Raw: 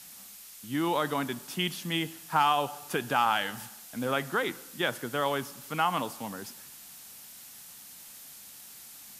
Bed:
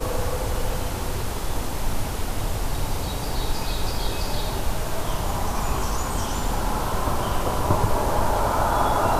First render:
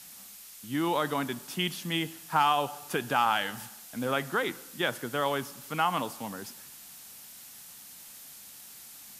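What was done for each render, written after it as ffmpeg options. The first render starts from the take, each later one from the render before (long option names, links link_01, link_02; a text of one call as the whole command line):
ffmpeg -i in.wav -af anull out.wav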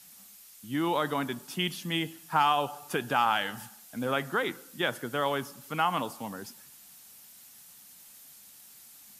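ffmpeg -i in.wav -af "afftdn=noise_reduction=6:noise_floor=-49" out.wav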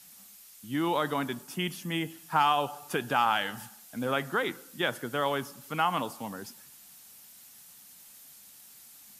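ffmpeg -i in.wav -filter_complex "[0:a]asettb=1/sr,asplit=3[link_01][link_02][link_03];[link_01]atrim=end=1.434[link_04];[link_02]atrim=start=1.43:end=2.1,asetpts=PTS-STARTPTS,afade=type=in:duration=0.004:curve=qsin,afade=type=out:start_time=0.666:duration=0.004:curve=qsin,equalizer=frequency=3800:width=1.7:gain=-6.5[link_05];[link_03]atrim=start=2.096[link_06];[link_04][link_05]acrossfade=duration=0.004:curve1=hsin:curve2=qsin[link_07];[link_07][link_06]acrossfade=duration=0.004:curve1=qsin:curve2=hsin" out.wav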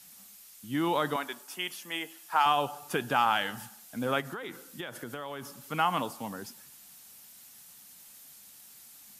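ffmpeg -i in.wav -filter_complex "[0:a]asettb=1/sr,asplit=3[link_01][link_02][link_03];[link_01]atrim=end=1.164[link_04];[link_02]atrim=start=1.16:end=2.46,asetpts=PTS-STARTPTS,afade=type=in:duration=0.004:curve=qsin,afade=type=out:start_time=1.296:duration=0.004:curve=qsin,highpass=520[link_05];[link_03]atrim=start=2.456[link_06];[link_04][link_05]acrossfade=duration=0.004:curve1=hsin:curve2=qsin[link_07];[link_07][link_06]acrossfade=duration=0.004:curve1=qsin:curve2=hsin,asplit=3[link_08][link_09][link_10];[link_08]afade=type=out:start_time=4.2:duration=0.02[link_11];[link_09]acompressor=threshold=-34dB:ratio=8:attack=3.2:release=140:knee=1:detection=peak,afade=type=in:start_time=4.2:duration=0.02,afade=type=out:start_time=5.55:duration=0.02[link_12];[link_10]afade=type=in:start_time=5.55:duration=0.02[link_13];[link_11][link_12][link_13]amix=inputs=3:normalize=0" out.wav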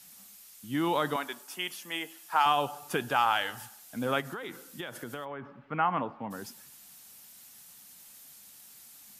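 ffmpeg -i in.wav -filter_complex "[0:a]asettb=1/sr,asplit=3[link_01][link_02][link_03];[link_01]atrim=end=3.084[link_04];[link_02]atrim=start=3.08:end=3.87,asetpts=PTS-STARTPTS,afade=type=in:duration=0.004:curve=qsin,afade=type=out:start_time=0.786:duration=0.004:curve=qsin,equalizer=frequency=200:width_type=o:width=0.77:gain=-11[link_05];[link_03]atrim=start=3.866[link_06];[link_04][link_05]acrossfade=duration=0.004:curve1=hsin:curve2=qsin[link_07];[link_07][link_06]acrossfade=duration=0.004:curve1=qsin:curve2=hsin,asplit=3[link_08][link_09][link_10];[link_08]afade=type=out:start_time=5.24:duration=0.02[link_11];[link_09]lowpass=frequency=2200:width=0.5412,lowpass=frequency=2200:width=1.3066,afade=type=in:start_time=5.24:duration=0.02,afade=type=out:start_time=6.3:duration=0.02[link_12];[link_10]afade=type=in:start_time=6.3:duration=0.02[link_13];[link_11][link_12][link_13]amix=inputs=3:normalize=0" out.wav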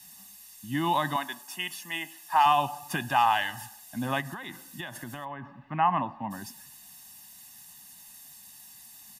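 ffmpeg -i in.wav -af "aecho=1:1:1.1:0.91" out.wav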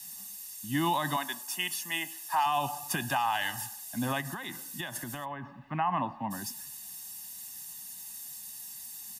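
ffmpeg -i in.wav -filter_complex "[0:a]acrossover=split=220|480|4600[link_01][link_02][link_03][link_04];[link_04]acontrast=70[link_05];[link_01][link_02][link_03][link_05]amix=inputs=4:normalize=0,alimiter=limit=-19.5dB:level=0:latency=1:release=79" out.wav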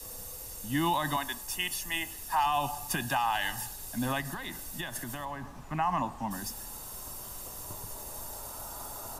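ffmpeg -i in.wav -i bed.wav -filter_complex "[1:a]volume=-24.5dB[link_01];[0:a][link_01]amix=inputs=2:normalize=0" out.wav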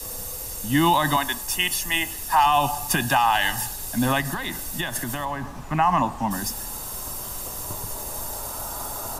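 ffmpeg -i in.wav -af "volume=9.5dB" out.wav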